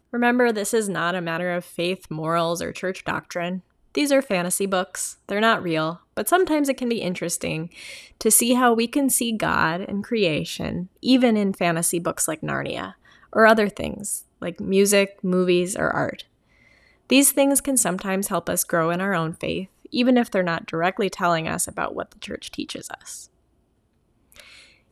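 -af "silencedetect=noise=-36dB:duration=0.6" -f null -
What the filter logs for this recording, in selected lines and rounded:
silence_start: 16.21
silence_end: 17.10 | silence_duration: 0.88
silence_start: 23.25
silence_end: 24.32 | silence_duration: 1.08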